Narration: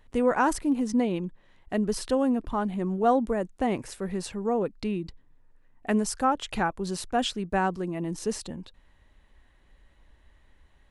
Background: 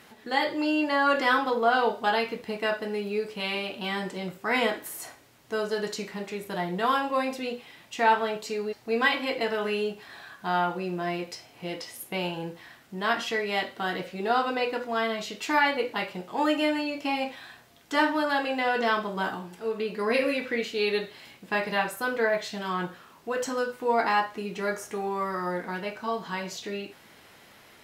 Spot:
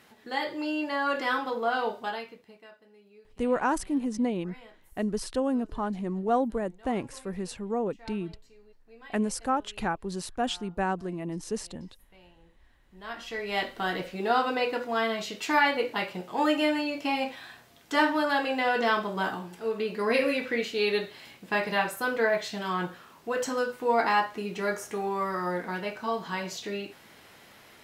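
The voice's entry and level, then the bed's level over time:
3.25 s, -3.0 dB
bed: 1.97 s -5 dB
2.77 s -26.5 dB
12.57 s -26.5 dB
13.62 s 0 dB

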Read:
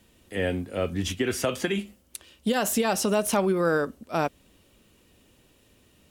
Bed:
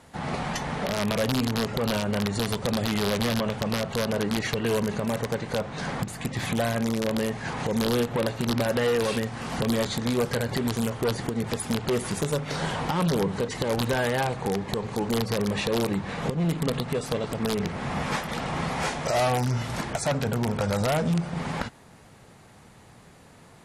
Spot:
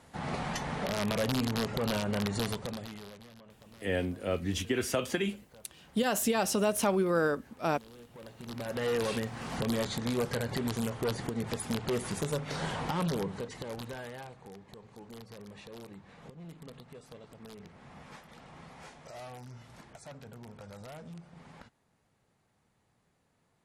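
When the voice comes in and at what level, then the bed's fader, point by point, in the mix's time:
3.50 s, -4.0 dB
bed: 2.46 s -5 dB
3.29 s -28.5 dB
7.98 s -28.5 dB
8.93 s -6 dB
12.97 s -6 dB
14.47 s -22 dB

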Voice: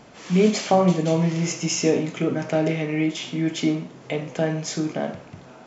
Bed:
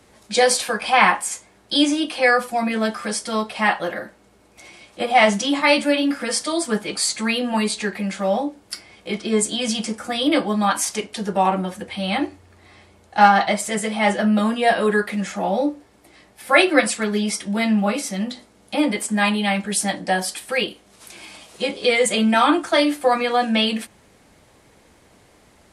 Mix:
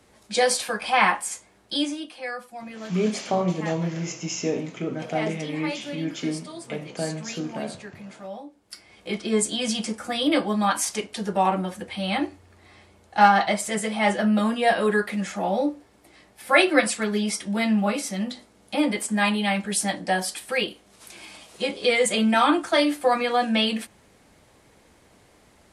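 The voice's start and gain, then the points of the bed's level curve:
2.60 s, -6.0 dB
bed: 1.64 s -4.5 dB
2.22 s -16.5 dB
8.48 s -16.5 dB
9.01 s -3 dB

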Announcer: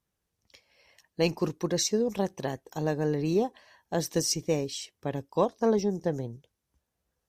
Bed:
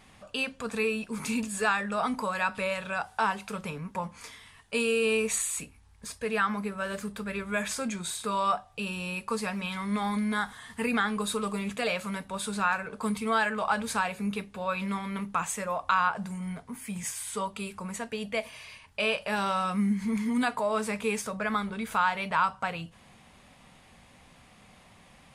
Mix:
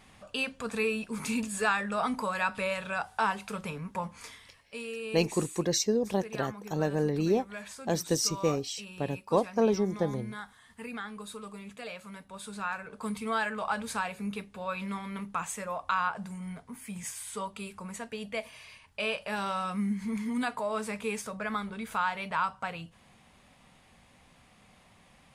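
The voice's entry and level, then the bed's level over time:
3.95 s, -0.5 dB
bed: 4.32 s -1 dB
4.75 s -12 dB
12.00 s -12 dB
13.21 s -4 dB

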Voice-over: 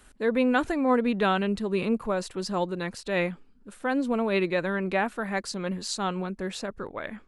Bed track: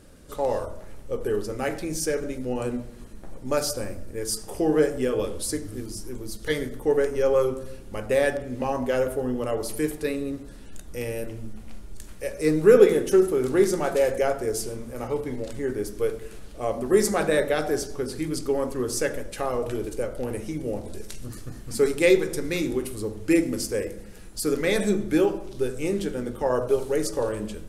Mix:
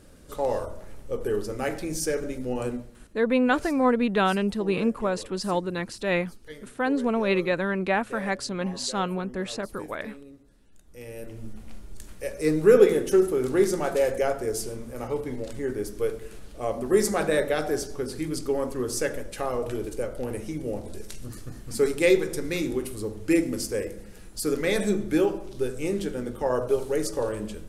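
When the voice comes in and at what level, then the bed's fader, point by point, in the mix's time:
2.95 s, +1.5 dB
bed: 2.68 s -1 dB
3.29 s -17 dB
10.74 s -17 dB
11.47 s -1.5 dB

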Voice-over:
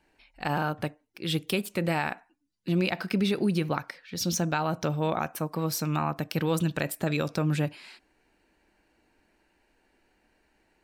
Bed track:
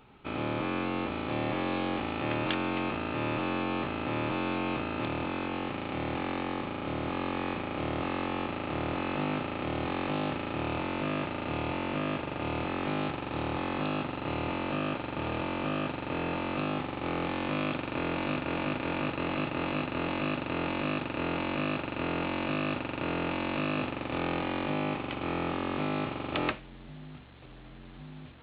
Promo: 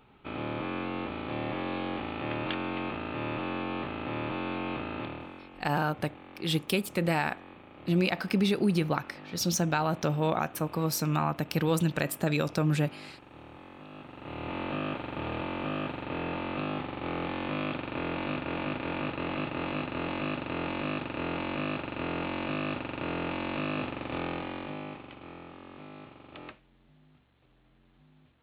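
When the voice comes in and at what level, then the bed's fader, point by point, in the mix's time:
5.20 s, 0.0 dB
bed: 4.97 s -2.5 dB
5.49 s -16.5 dB
13.87 s -16.5 dB
14.59 s -1.5 dB
24.15 s -1.5 dB
25.49 s -15.5 dB

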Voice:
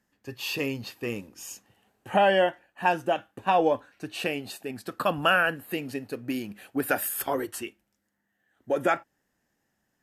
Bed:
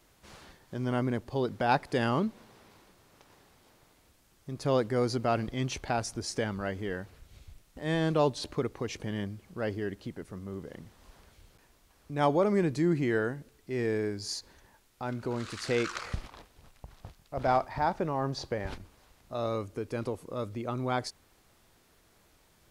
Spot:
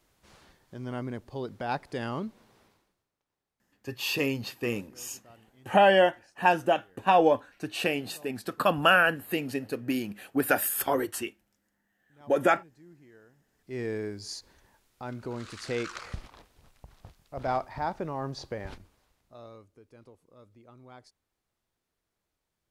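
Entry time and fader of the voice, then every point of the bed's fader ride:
3.60 s, +1.5 dB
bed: 2.64 s -5.5 dB
3.16 s -27.5 dB
13.31 s -27.5 dB
13.74 s -3 dB
18.68 s -3 dB
19.73 s -20 dB

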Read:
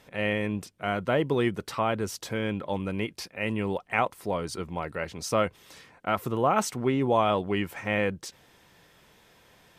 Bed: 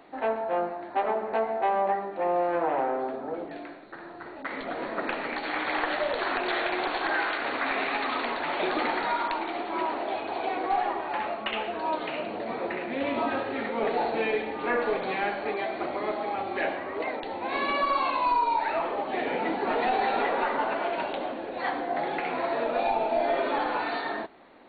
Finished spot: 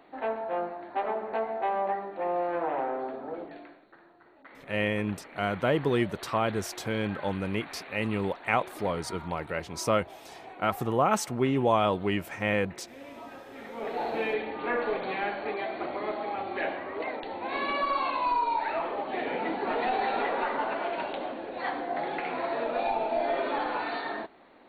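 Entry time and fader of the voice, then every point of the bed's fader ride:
4.55 s, -0.5 dB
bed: 3.41 s -3.5 dB
4.18 s -16.5 dB
13.40 s -16.5 dB
14.12 s -2.5 dB

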